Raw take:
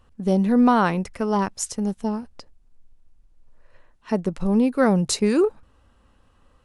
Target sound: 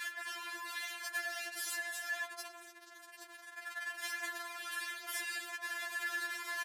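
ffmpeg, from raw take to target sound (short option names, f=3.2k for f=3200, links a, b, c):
-filter_complex "[0:a]aeval=exprs='val(0)+0.5*0.0501*sgn(val(0))':c=same,highpass=800,afftfilt=real='re*lt(hypot(re,im),0.0501)':imag='im*lt(hypot(re,im),0.0501)':win_size=1024:overlap=0.75,equalizer=f=1.7k:t=o:w=0.26:g=12.5,asoftclip=type=tanh:threshold=-24dB,afreqshift=46,asplit=2[a][b];[b]adelay=102,lowpass=f=1.3k:p=1,volume=-3dB,asplit=2[c][d];[d]adelay=102,lowpass=f=1.3k:p=1,volume=0.54,asplit=2[e][f];[f]adelay=102,lowpass=f=1.3k:p=1,volume=0.54,asplit=2[g][h];[h]adelay=102,lowpass=f=1.3k:p=1,volume=0.54,asplit=2[i][j];[j]adelay=102,lowpass=f=1.3k:p=1,volume=0.54,asplit=2[k][l];[l]adelay=102,lowpass=f=1.3k:p=1,volume=0.54,asplit=2[m][n];[n]adelay=102,lowpass=f=1.3k:p=1,volume=0.54[o];[a][c][e][g][i][k][m][o]amix=inputs=8:normalize=0,aresample=32000,aresample=44100,afftfilt=real='re*4*eq(mod(b,16),0)':imag='im*4*eq(mod(b,16),0)':win_size=2048:overlap=0.75,volume=-2.5dB"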